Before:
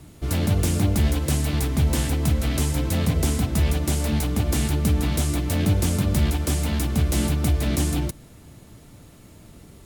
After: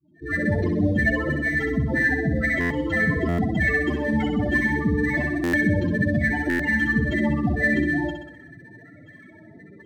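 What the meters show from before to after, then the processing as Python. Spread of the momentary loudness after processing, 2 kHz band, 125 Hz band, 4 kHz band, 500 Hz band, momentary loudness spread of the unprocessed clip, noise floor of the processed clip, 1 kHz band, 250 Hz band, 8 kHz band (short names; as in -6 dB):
3 LU, +15.0 dB, -5.0 dB, -9.5 dB, +4.0 dB, 3 LU, -48 dBFS, +0.5 dB, +3.0 dB, under -20 dB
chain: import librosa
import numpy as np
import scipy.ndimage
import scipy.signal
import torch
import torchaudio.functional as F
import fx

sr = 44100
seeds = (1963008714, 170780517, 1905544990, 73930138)

p1 = fx.fade_in_head(x, sr, length_s=0.54)
p2 = fx.highpass(p1, sr, hz=880.0, slope=6)
p3 = fx.spec_gate(p2, sr, threshold_db=-10, keep='strong')
p4 = fx.peak_eq(p3, sr, hz=1800.0, db=14.0, octaves=0.36)
p5 = fx.rider(p4, sr, range_db=10, speed_s=0.5)
p6 = p4 + F.gain(torch.from_numpy(p5), 1.0).numpy()
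p7 = fx.spec_topn(p6, sr, count=8)
p8 = fx.sample_hold(p7, sr, seeds[0], rate_hz=10000.0, jitter_pct=0)
p9 = fx.air_absorb(p8, sr, metres=220.0)
p10 = fx.room_flutter(p9, sr, wall_m=10.9, rt60_s=0.71)
p11 = fx.buffer_glitch(p10, sr, at_s=(2.6, 3.28, 5.43, 6.49), block=512, repeats=8)
y = F.gain(torch.from_numpy(p11), 8.5).numpy()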